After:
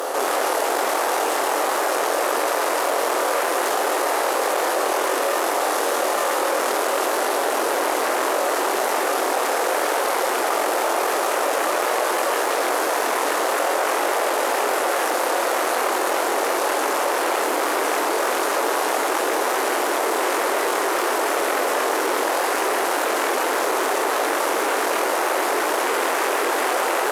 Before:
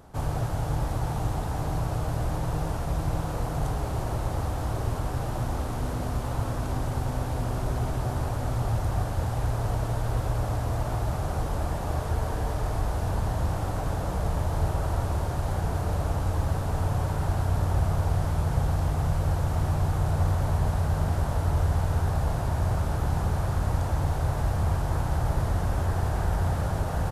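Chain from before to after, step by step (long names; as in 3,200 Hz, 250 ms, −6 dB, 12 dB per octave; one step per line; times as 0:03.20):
high-shelf EQ 5,100 Hz +4.5 dB
hollow resonant body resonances 540/1,200/1,800/2,800 Hz, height 7 dB
on a send: flutter between parallel walls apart 4 metres, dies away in 0.43 s
on the sum: convolution reverb RT60 1.9 s, pre-delay 4 ms, DRR 18.5 dB
in parallel at −5 dB: sine wavefolder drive 17 dB, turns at −9 dBFS
on the sum: Butterworth high-pass 350 Hz 36 dB per octave
envelope flattener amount 70%
level −4 dB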